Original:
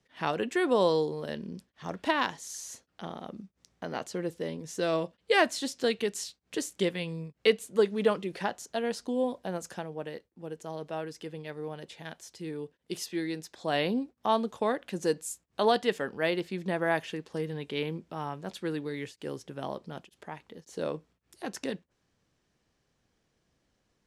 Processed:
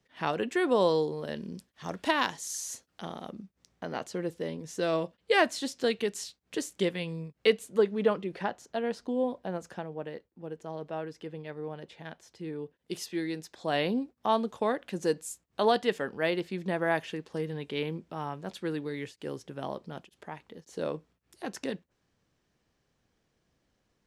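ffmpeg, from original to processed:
-af "asetnsamples=n=441:p=0,asendcmd='1.36 equalizer g 5.5;3.31 equalizer g -2.5;7.78 equalizer g -12;12.77 equalizer g -2.5',equalizer=f=11k:t=o:w=2.2:g=-2"

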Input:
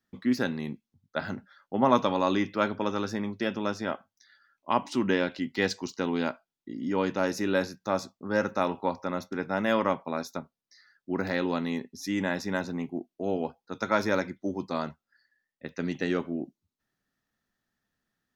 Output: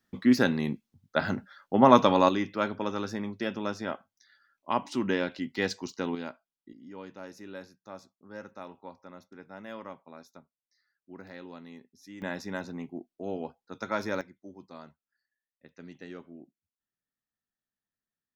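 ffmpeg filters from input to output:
-af "asetnsamples=n=441:p=0,asendcmd='2.29 volume volume -2.5dB;6.15 volume volume -9dB;6.73 volume volume -16.5dB;12.22 volume volume -5.5dB;14.21 volume volume -15.5dB',volume=4.5dB"

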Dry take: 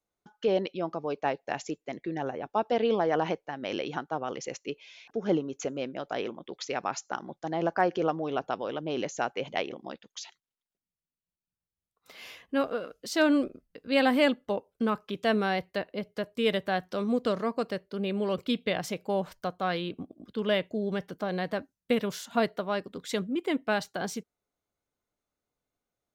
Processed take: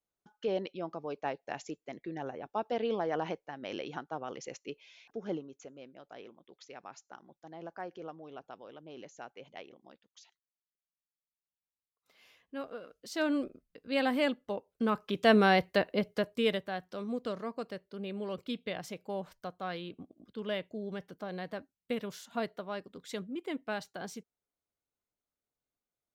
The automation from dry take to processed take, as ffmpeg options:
-af "volume=14dB,afade=t=out:st=5.04:d=0.58:silence=0.316228,afade=t=in:st=12.32:d=1.18:silence=0.298538,afade=t=in:st=14.68:d=0.76:silence=0.316228,afade=t=out:st=15.99:d=0.68:silence=0.237137"

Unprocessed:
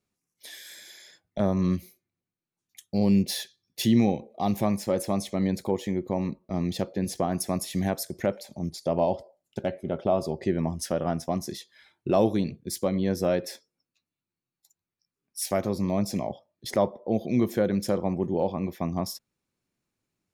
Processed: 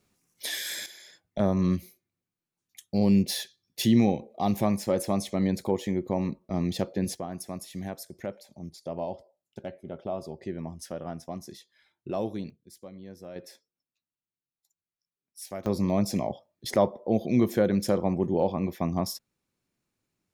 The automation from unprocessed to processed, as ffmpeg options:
-af "asetnsamples=n=441:p=0,asendcmd='0.86 volume volume 0dB;7.15 volume volume -9dB;12.5 volume volume -18.5dB;13.36 volume volume -11dB;15.66 volume volume 1dB',volume=11dB"

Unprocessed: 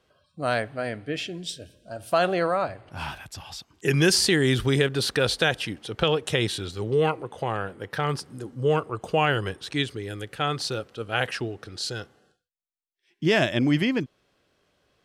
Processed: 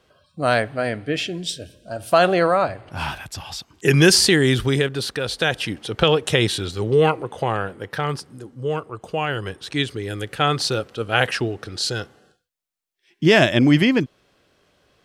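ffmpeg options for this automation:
-af "volume=24.5dB,afade=t=out:st=4.08:d=1.16:silence=0.334965,afade=t=in:st=5.24:d=0.52:silence=0.354813,afade=t=out:st=7.42:d=1.07:silence=0.398107,afade=t=in:st=9.28:d=1.03:silence=0.354813"

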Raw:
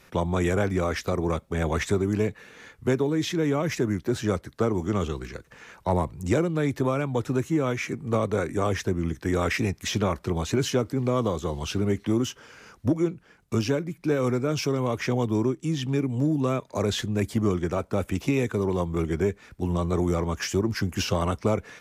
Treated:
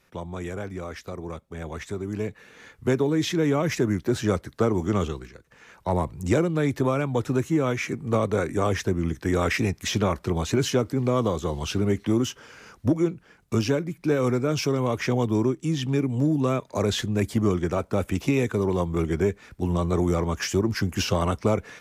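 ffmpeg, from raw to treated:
-af "volume=13dB,afade=t=in:st=1.88:d=1.24:silence=0.281838,afade=t=out:st=5:d=0.33:silence=0.266073,afade=t=in:st=5.33:d=0.85:silence=0.281838"

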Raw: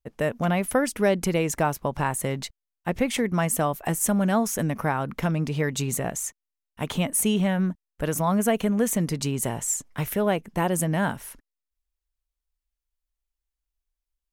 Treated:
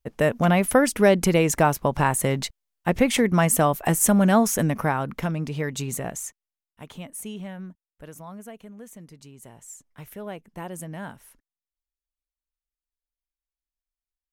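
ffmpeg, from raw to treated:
-af "volume=13dB,afade=t=out:st=4.42:d=0.93:silence=0.446684,afade=t=out:st=6.17:d=0.68:silence=0.298538,afade=t=out:st=7.48:d=1.12:silence=0.446684,afade=t=in:st=9.36:d=1.12:silence=0.375837"

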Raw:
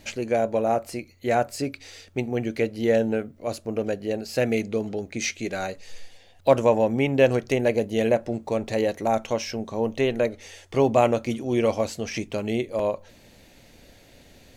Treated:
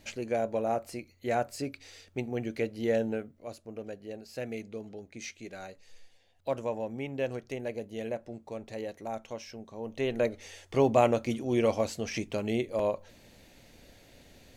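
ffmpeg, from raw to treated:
-af "volume=3dB,afade=t=out:st=3.06:d=0.49:silence=0.446684,afade=t=in:st=9.83:d=0.44:silence=0.316228"

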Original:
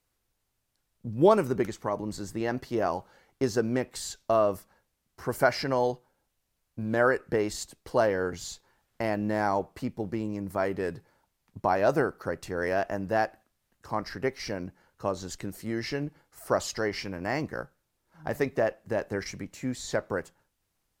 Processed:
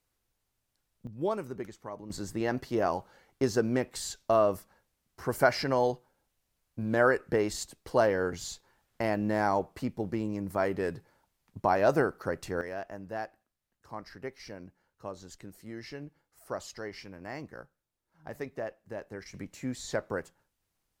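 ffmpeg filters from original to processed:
-af "asetnsamples=n=441:p=0,asendcmd='1.07 volume volume -11dB;2.1 volume volume -0.5dB;12.61 volume volume -10.5dB;19.34 volume volume -3dB',volume=-2dB"

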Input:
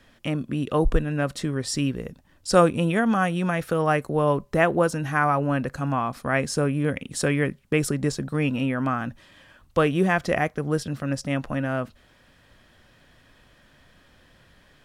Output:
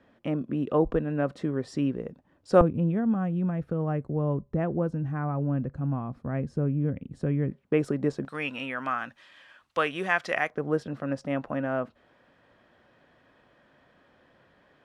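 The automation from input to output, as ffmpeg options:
-af "asetnsamples=n=441:p=0,asendcmd='2.61 bandpass f 110;7.51 bandpass f 470;8.25 bandpass f 2000;10.5 bandpass f 590',bandpass=f=420:t=q:w=0.57:csg=0"

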